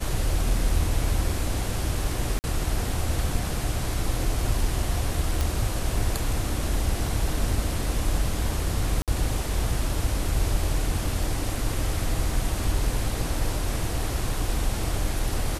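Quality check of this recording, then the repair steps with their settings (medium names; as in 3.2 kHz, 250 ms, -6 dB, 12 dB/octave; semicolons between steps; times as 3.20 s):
2.39–2.44 s: dropout 49 ms
5.41 s: pop
9.02–9.08 s: dropout 57 ms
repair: de-click; interpolate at 2.39 s, 49 ms; interpolate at 9.02 s, 57 ms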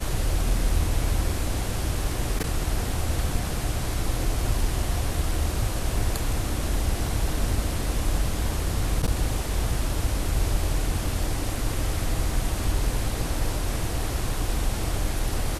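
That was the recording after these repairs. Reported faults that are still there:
nothing left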